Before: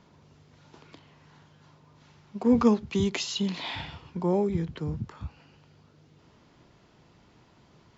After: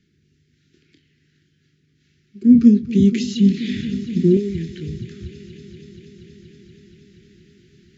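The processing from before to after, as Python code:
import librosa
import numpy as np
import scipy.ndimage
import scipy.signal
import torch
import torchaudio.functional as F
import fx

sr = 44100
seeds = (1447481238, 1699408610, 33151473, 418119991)

y = scipy.signal.sosfilt(scipy.signal.ellip(3, 1.0, 50, [380.0, 1700.0], 'bandstop', fs=sr, output='sos'), x)
y = fx.echo_heads(y, sr, ms=238, heads='first and second', feedback_pct=75, wet_db=-18.5)
y = fx.rider(y, sr, range_db=4, speed_s=2.0)
y = fx.peak_eq(y, sr, hz=220.0, db=14.5, octaves=2.0, at=(2.42, 4.37))
y = fx.doubler(y, sr, ms=25.0, db=-10)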